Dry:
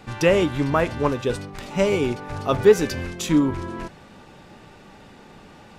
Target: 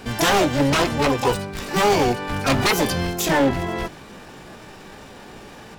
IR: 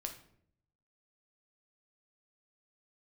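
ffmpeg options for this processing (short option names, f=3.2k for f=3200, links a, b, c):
-filter_complex "[0:a]aeval=exprs='0.133*(abs(mod(val(0)/0.133+3,4)-2)-1)':c=same,asplit=2[a][b];[b]asetrate=88200,aresample=44100,atempo=0.5,volume=-1dB[c];[a][c]amix=inputs=2:normalize=0,volume=3dB"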